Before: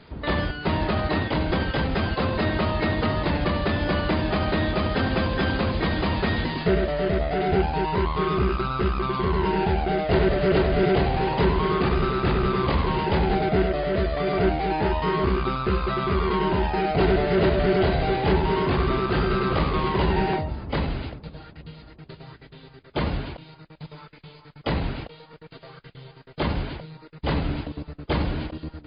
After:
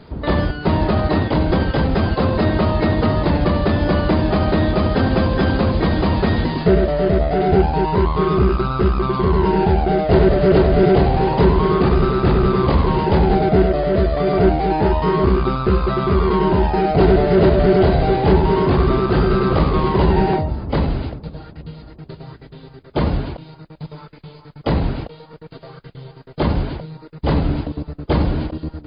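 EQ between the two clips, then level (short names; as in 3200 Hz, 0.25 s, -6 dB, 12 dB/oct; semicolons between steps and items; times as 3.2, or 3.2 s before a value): bell 2500 Hz -8.5 dB 2 oct; +8.0 dB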